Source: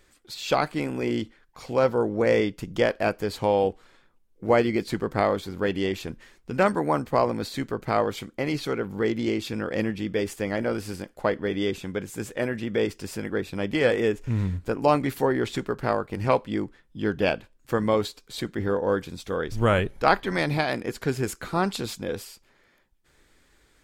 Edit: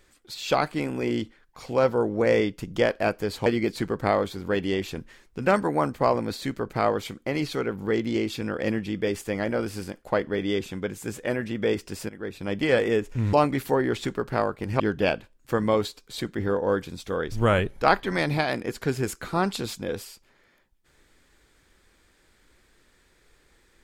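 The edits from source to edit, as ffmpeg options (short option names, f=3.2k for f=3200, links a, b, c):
-filter_complex "[0:a]asplit=5[a][b][c][d][e];[a]atrim=end=3.462[f];[b]atrim=start=4.578:end=13.21,asetpts=PTS-STARTPTS,afade=t=out:st=8.628:d=0.004:c=hsin:silence=0.188365[g];[c]atrim=start=13.21:end=14.452,asetpts=PTS-STARTPTS,afade=t=in:d=0.45:silence=0.188365[h];[d]atrim=start=14.838:end=16.312[i];[e]atrim=start=16.998[j];[g][h]concat=n=2:v=0:a=1[k];[f][k]acrossfade=d=0.004:c1=hsin:c2=hsin[l];[l][i]acrossfade=d=0.004:c1=hsin:c2=hsin[m];[m][j]acrossfade=d=0.004:c1=hsin:c2=hsin"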